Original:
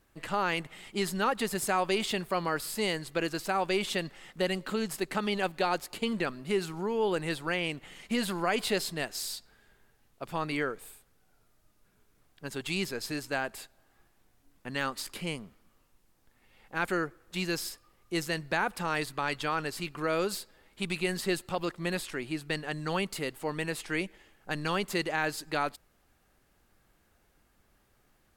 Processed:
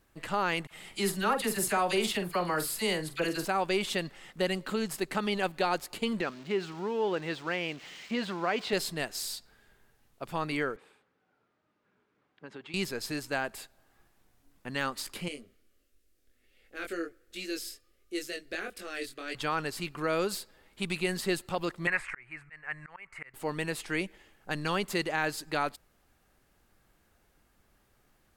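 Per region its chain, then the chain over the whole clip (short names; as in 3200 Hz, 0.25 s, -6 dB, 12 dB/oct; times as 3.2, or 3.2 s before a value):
0.67–3.45 bell 11000 Hz +6 dB 0.48 oct + doubler 45 ms -10.5 dB + dispersion lows, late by 42 ms, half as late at 1400 Hz
6.21–8.73 switching spikes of -30 dBFS + HPF 200 Hz 6 dB/oct + air absorption 170 m
10.76–12.74 notch 680 Hz, Q 10 + compressor, threshold -39 dBFS + BPF 200–2500 Hz
15.28–19.35 chorus 1.4 Hz, delay 20 ms, depth 4.4 ms + fixed phaser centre 380 Hz, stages 4
21.87–23.34 EQ curve 130 Hz 0 dB, 200 Hz -16 dB, 500 Hz -7 dB, 1100 Hz +6 dB, 2200 Hz +13 dB, 3500 Hz -17 dB, 6000 Hz -12 dB, 8600 Hz -8 dB, 15000 Hz -29 dB + auto swell 0.525 s
whole clip: dry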